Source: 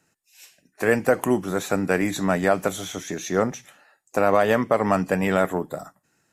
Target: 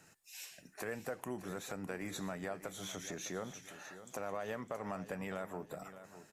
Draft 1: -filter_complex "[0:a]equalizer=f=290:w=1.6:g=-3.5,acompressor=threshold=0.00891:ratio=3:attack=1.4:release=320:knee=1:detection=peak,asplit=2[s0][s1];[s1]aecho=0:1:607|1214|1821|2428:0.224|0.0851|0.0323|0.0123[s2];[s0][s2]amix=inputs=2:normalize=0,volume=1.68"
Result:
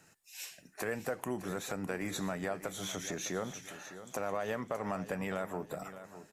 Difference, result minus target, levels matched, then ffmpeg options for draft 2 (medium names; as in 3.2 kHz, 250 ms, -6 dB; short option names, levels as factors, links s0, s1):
compression: peak gain reduction -5 dB
-filter_complex "[0:a]equalizer=f=290:w=1.6:g=-3.5,acompressor=threshold=0.00376:ratio=3:attack=1.4:release=320:knee=1:detection=peak,asplit=2[s0][s1];[s1]aecho=0:1:607|1214|1821|2428:0.224|0.0851|0.0323|0.0123[s2];[s0][s2]amix=inputs=2:normalize=0,volume=1.68"